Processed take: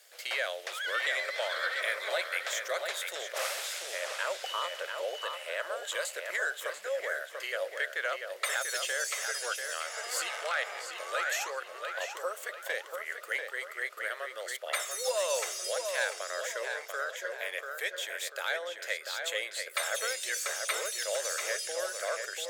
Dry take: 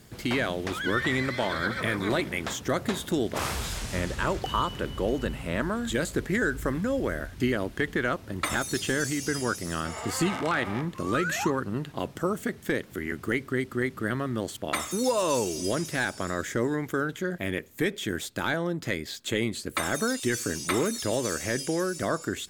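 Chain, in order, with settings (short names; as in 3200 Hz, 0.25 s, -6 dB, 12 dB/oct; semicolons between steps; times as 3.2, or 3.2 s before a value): elliptic high-pass 540 Hz, stop band 50 dB; bell 970 Hz -10 dB 0.91 oct; on a send: darkening echo 0.69 s, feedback 41%, low-pass 4600 Hz, level -5 dB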